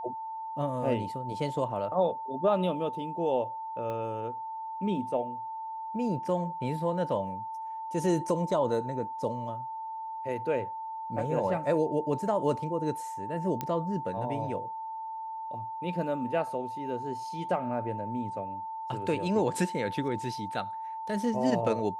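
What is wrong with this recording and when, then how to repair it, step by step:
whine 890 Hz -35 dBFS
3.90 s: pop -25 dBFS
13.61 s: pop -17 dBFS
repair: de-click; band-stop 890 Hz, Q 30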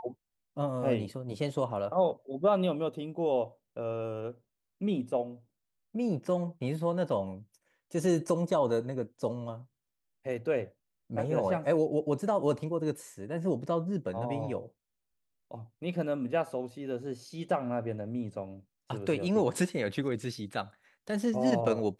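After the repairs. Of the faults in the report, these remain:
3.90 s: pop

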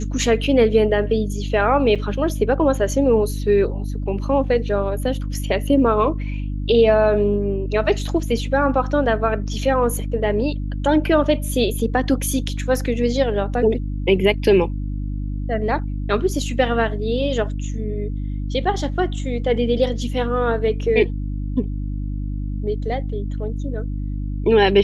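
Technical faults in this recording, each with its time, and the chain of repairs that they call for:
hum 50 Hz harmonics 6 -25 dBFS
1.95–1.96 s: dropout 6.5 ms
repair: de-hum 50 Hz, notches 6; interpolate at 1.95 s, 6.5 ms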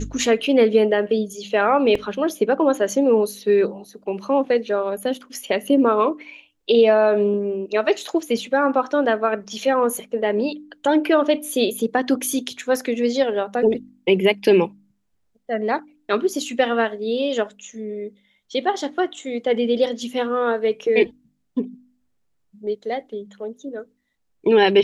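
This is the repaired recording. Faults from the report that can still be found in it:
nothing left

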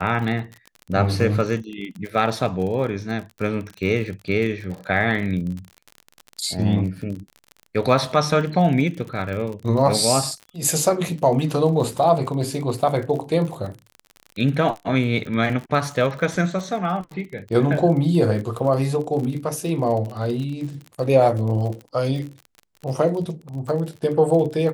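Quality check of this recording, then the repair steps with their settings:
crackle 43 per s -29 dBFS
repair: de-click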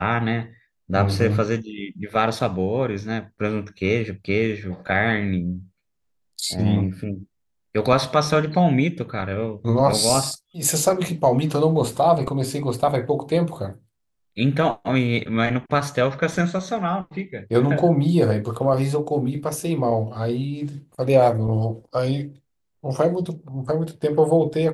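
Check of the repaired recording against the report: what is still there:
nothing left

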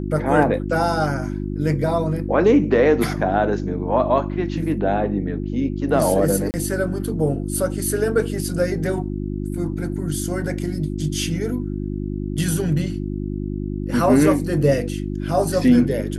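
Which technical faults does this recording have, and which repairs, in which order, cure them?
hum 50 Hz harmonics 7 -26 dBFS
6.51–6.54 s: dropout 29 ms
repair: de-hum 50 Hz, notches 7; interpolate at 6.51 s, 29 ms

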